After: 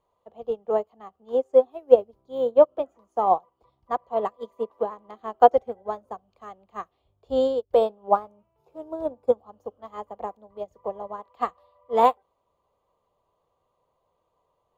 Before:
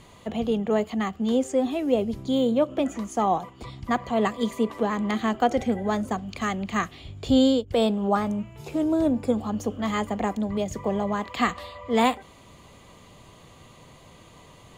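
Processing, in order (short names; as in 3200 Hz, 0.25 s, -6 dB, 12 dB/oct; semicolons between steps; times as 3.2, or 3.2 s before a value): ten-band EQ 125 Hz -6 dB, 250 Hz -8 dB, 500 Hz +9 dB, 1000 Hz +9 dB, 2000 Hz -9 dB, 4000 Hz -3 dB, 8000 Hz -10 dB; upward expander 2.5:1, over -29 dBFS; gain +2 dB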